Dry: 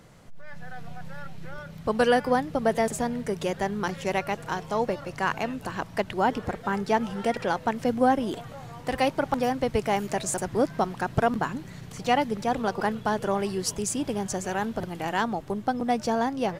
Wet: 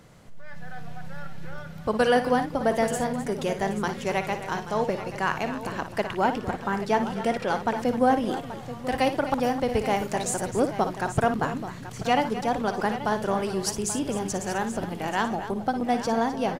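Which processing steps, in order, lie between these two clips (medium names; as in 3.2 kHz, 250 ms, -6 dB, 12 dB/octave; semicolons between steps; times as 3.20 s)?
multi-tap echo 57/258/831 ms -10/-13/-13 dB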